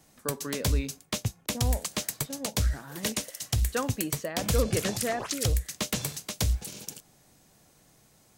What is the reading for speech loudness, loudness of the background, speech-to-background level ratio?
-35.5 LUFS, -31.0 LUFS, -4.5 dB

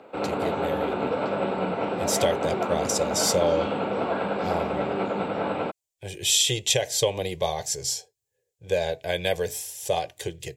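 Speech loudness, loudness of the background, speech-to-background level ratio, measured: -26.0 LUFS, -28.0 LUFS, 2.0 dB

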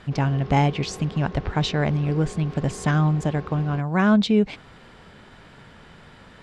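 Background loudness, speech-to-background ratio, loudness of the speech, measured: -39.5 LUFS, 17.0 dB, -22.5 LUFS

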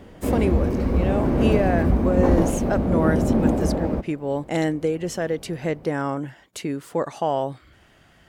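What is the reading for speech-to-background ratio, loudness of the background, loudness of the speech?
-4.5 dB, -22.0 LUFS, -26.5 LUFS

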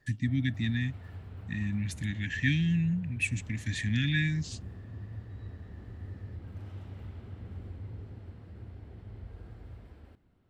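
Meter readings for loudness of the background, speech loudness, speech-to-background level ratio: -45.0 LUFS, -31.0 LUFS, 14.0 dB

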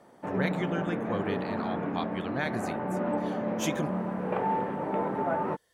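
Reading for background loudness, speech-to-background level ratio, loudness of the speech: -31.5 LUFS, -4.0 dB, -35.5 LUFS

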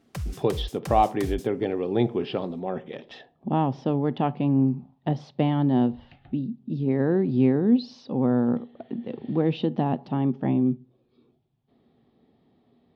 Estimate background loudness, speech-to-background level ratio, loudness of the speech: -36.0 LUFS, 10.5 dB, -25.5 LUFS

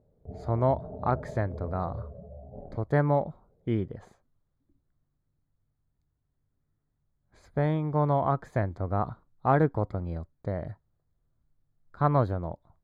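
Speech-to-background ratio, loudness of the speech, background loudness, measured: 14.0 dB, -29.0 LUFS, -43.0 LUFS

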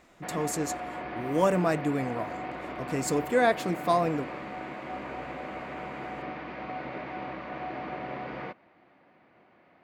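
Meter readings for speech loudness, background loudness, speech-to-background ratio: -28.5 LUFS, -37.5 LUFS, 9.0 dB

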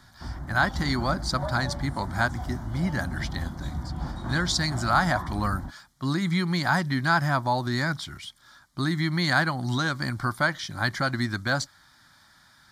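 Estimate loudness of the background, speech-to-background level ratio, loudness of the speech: -35.5 LUFS, 9.0 dB, -26.5 LUFS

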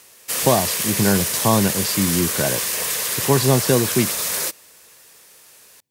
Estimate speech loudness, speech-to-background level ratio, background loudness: -21.0 LUFS, 0.0 dB, -21.0 LUFS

